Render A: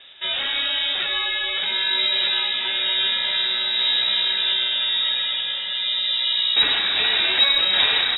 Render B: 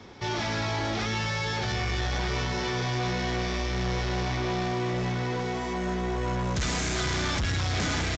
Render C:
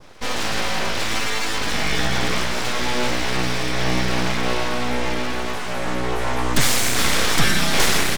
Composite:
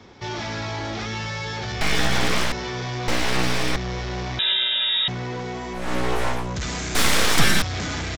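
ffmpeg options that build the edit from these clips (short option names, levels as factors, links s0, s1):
-filter_complex "[2:a]asplit=4[s0][s1][s2][s3];[1:a]asplit=6[s4][s5][s6][s7][s8][s9];[s4]atrim=end=1.812[s10];[s0]atrim=start=1.808:end=2.522[s11];[s5]atrim=start=2.518:end=3.082[s12];[s1]atrim=start=3.078:end=3.762[s13];[s6]atrim=start=3.758:end=4.392[s14];[0:a]atrim=start=4.388:end=5.082[s15];[s7]atrim=start=5.078:end=5.95[s16];[s2]atrim=start=5.71:end=6.5[s17];[s8]atrim=start=6.26:end=6.952[s18];[s3]atrim=start=6.948:end=7.622[s19];[s9]atrim=start=7.618[s20];[s10][s11]acrossfade=d=0.004:c1=hsin:c2=hsin[s21];[s21][s12]acrossfade=d=0.004:c1=hsin:c2=hsin[s22];[s22][s13]acrossfade=d=0.004:c1=hsin:c2=hsin[s23];[s23][s14]acrossfade=d=0.004:c1=hsin:c2=hsin[s24];[s24][s15]acrossfade=d=0.004:c1=hsin:c2=hsin[s25];[s25][s16]acrossfade=d=0.004:c1=hsin:c2=hsin[s26];[s26][s17]acrossfade=d=0.24:c1=tri:c2=tri[s27];[s27][s18]acrossfade=d=0.24:c1=tri:c2=tri[s28];[s28][s19]acrossfade=d=0.004:c1=hsin:c2=hsin[s29];[s29][s20]acrossfade=d=0.004:c1=hsin:c2=hsin"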